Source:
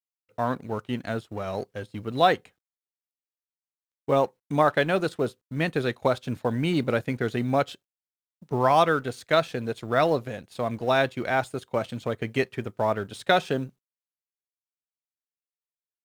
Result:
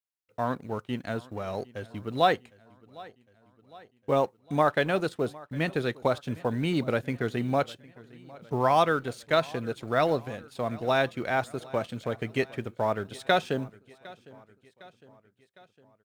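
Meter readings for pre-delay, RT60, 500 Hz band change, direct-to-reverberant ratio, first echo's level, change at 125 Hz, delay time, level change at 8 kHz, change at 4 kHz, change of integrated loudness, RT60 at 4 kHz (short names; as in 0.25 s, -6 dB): none, none, -2.5 dB, none, -22.0 dB, -2.5 dB, 0.757 s, -2.5 dB, -2.5 dB, -2.5 dB, none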